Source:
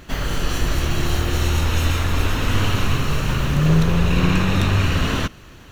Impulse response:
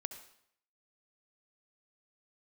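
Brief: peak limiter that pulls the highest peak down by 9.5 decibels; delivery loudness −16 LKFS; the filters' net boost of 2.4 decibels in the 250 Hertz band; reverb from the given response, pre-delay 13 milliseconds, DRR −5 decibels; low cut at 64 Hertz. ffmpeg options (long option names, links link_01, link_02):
-filter_complex "[0:a]highpass=64,equalizer=frequency=250:width_type=o:gain=4,alimiter=limit=-14dB:level=0:latency=1,asplit=2[link_01][link_02];[1:a]atrim=start_sample=2205,adelay=13[link_03];[link_02][link_03]afir=irnorm=-1:irlink=0,volume=7dB[link_04];[link_01][link_04]amix=inputs=2:normalize=0,volume=0.5dB"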